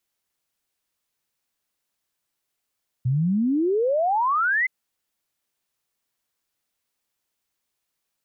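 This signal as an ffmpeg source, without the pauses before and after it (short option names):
-f lavfi -i "aevalsrc='0.119*clip(min(t,1.62-t)/0.01,0,1)*sin(2*PI*120*1.62/log(2100/120)*(exp(log(2100/120)*t/1.62)-1))':d=1.62:s=44100"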